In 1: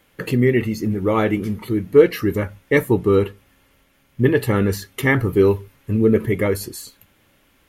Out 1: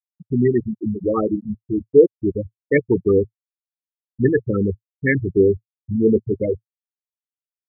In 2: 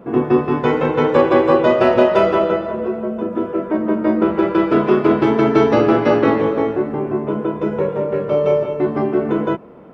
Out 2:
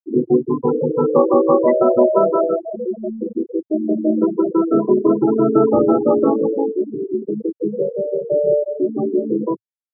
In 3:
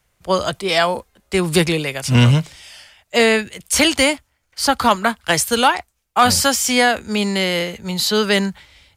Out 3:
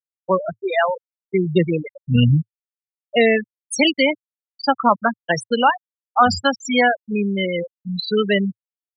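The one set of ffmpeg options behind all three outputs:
-af "afftfilt=real='re*gte(hypot(re,im),0.447)':imag='im*gte(hypot(re,im),0.447)':win_size=1024:overlap=0.75,equalizer=frequency=110:width=6:gain=-8"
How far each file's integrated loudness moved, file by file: −1.0, −1.0, −2.5 LU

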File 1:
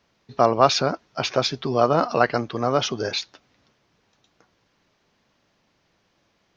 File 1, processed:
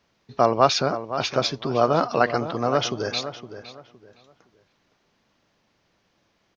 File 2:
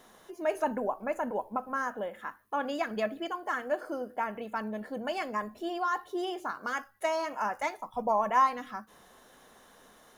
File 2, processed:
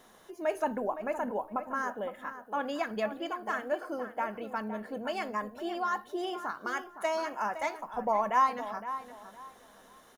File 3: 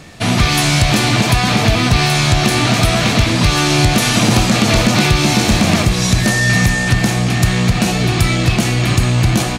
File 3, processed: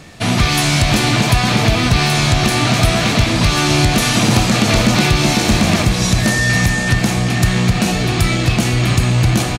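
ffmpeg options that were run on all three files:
-filter_complex "[0:a]asplit=2[link_01][link_02];[link_02]adelay=513,lowpass=frequency=2500:poles=1,volume=-11dB,asplit=2[link_03][link_04];[link_04]adelay=513,lowpass=frequency=2500:poles=1,volume=0.27,asplit=2[link_05][link_06];[link_06]adelay=513,lowpass=frequency=2500:poles=1,volume=0.27[link_07];[link_01][link_03][link_05][link_07]amix=inputs=4:normalize=0,volume=-1dB"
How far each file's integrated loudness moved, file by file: −1.0, −1.0, −1.0 LU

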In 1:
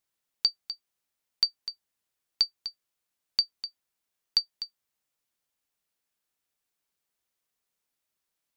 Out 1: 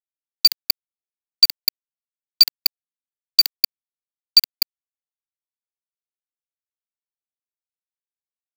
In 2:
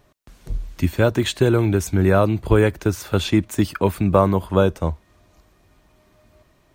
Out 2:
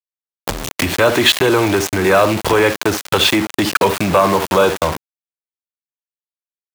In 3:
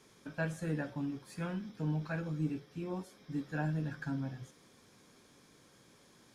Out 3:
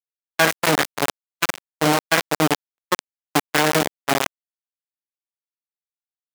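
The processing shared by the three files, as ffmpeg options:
-filter_complex "[0:a]bandreject=frequency=1400:width=25,aecho=1:1:56|69:0.126|0.141,acrossover=split=5200[link_01][link_02];[link_02]acompressor=threshold=-49dB:ratio=4:attack=1:release=60[link_03];[link_01][link_03]amix=inputs=2:normalize=0,aeval=exprs='val(0)*gte(abs(val(0)),0.0282)':channel_layout=same,acompressor=threshold=-36dB:ratio=2,agate=range=-58dB:threshold=-46dB:ratio=16:detection=peak,apsyclip=30dB,highpass=frequency=490:poles=1,volume=-3.5dB"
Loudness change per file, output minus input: +12.5, +4.5, +17.0 LU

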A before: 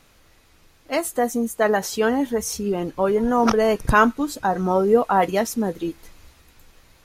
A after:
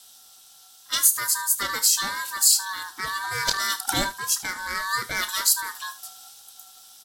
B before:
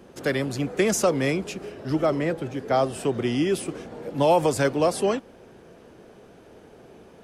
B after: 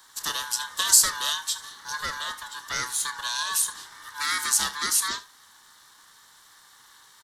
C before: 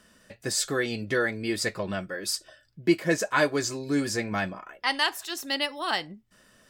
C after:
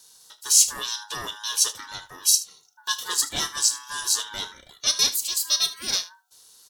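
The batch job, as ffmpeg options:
-filter_complex "[0:a]afftfilt=real='real(if(lt(b,960),b+48*(1-2*mod(floor(b/48),2)),b),0)':imag='imag(if(lt(b,960),b+48*(1-2*mod(floor(b/48),2)),b),0)':win_size=2048:overlap=0.75,asplit=2[link_01][link_02];[link_02]asoftclip=type=tanh:threshold=-18dB,volume=-6dB[link_03];[link_01][link_03]amix=inputs=2:normalize=0,aeval=exprs='val(0)*sin(2*PI*300*n/s)':channel_layout=same,aecho=1:1:31|76:0.211|0.141,aexciter=amount=10.6:drive=4:freq=3100,volume=-10dB"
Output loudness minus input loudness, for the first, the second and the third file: −1.0, 0.0, +5.5 LU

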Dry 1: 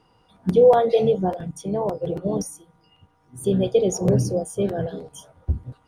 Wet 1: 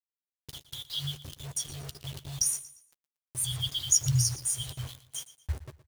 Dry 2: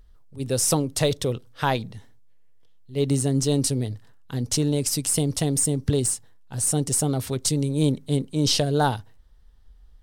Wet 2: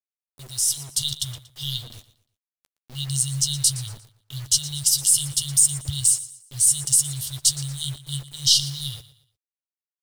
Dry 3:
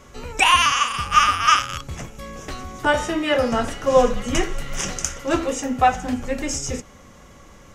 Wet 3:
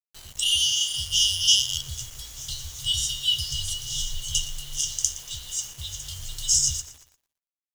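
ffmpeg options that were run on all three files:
-filter_complex "[0:a]afftfilt=real='re*(1-between(b*sr/4096,140,2800))':imag='im*(1-between(b*sr/4096,140,2800))':win_size=4096:overlap=0.75,lowshelf=frequency=490:gain=-11.5,dynaudnorm=framelen=110:gausssize=17:maxgain=10dB,acrusher=bits=6:mix=0:aa=0.000001,asplit=2[link_01][link_02];[link_02]adelay=13,volume=-12.5dB[link_03];[link_01][link_03]amix=inputs=2:normalize=0,asplit=2[link_04][link_05];[link_05]aecho=0:1:117|234|351:0.15|0.0509|0.0173[link_06];[link_04][link_06]amix=inputs=2:normalize=0,volume=-1.5dB"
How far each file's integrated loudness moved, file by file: −8.5, +3.0, −3.5 LU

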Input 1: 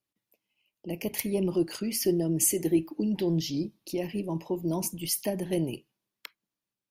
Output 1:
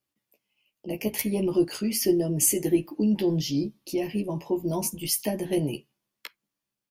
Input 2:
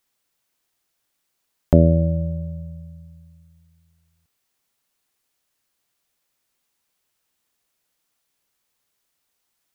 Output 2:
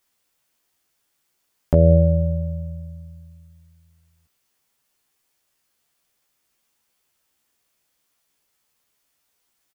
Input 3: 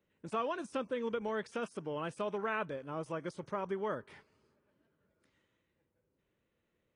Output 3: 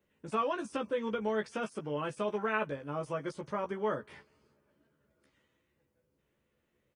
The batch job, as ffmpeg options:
-filter_complex "[0:a]bandreject=frequency=3900:width=27,asplit=2[link_01][link_02];[link_02]adelay=14,volume=-4dB[link_03];[link_01][link_03]amix=inputs=2:normalize=0,alimiter=level_in=5.5dB:limit=-1dB:release=50:level=0:latency=1,volume=-4dB"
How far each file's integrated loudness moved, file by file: +3.0, 0.0, +3.0 LU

